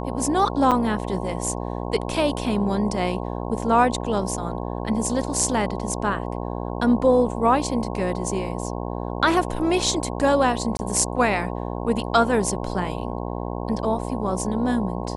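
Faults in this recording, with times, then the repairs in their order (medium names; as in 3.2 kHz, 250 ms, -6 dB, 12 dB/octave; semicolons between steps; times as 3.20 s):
buzz 60 Hz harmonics 18 -29 dBFS
0.71–0.72 s: dropout 6.7 ms
10.77–10.79 s: dropout 20 ms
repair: de-hum 60 Hz, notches 18; interpolate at 0.71 s, 6.7 ms; interpolate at 10.77 s, 20 ms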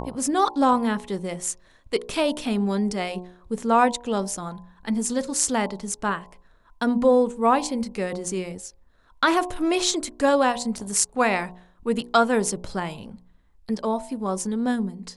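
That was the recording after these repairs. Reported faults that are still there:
nothing left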